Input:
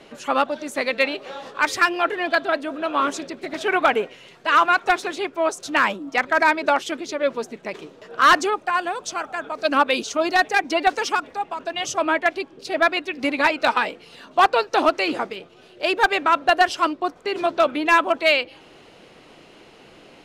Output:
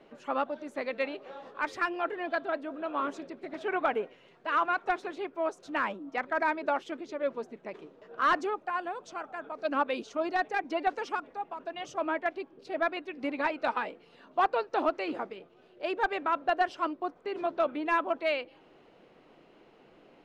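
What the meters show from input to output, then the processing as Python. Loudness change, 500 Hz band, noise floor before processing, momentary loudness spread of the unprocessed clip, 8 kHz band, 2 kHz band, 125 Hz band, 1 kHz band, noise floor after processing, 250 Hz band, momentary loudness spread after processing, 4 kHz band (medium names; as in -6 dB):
-11.0 dB, -9.0 dB, -49 dBFS, 11 LU, under -20 dB, -13.0 dB, no reading, -10.5 dB, -60 dBFS, -9.0 dB, 12 LU, -17.5 dB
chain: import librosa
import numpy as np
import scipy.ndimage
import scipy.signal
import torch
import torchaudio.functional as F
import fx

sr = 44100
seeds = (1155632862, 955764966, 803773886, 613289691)

y = fx.lowpass(x, sr, hz=1200.0, slope=6)
y = fx.peak_eq(y, sr, hz=77.0, db=-8.0, octaves=1.6)
y = y * librosa.db_to_amplitude(-8.0)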